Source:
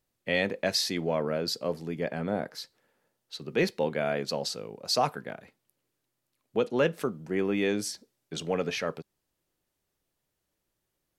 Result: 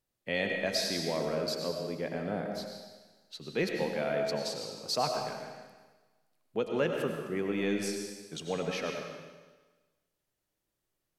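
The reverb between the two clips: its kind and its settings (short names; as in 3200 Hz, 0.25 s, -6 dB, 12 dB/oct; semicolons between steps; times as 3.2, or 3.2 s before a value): digital reverb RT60 1.3 s, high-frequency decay 1×, pre-delay 60 ms, DRR 2.5 dB; gain -5 dB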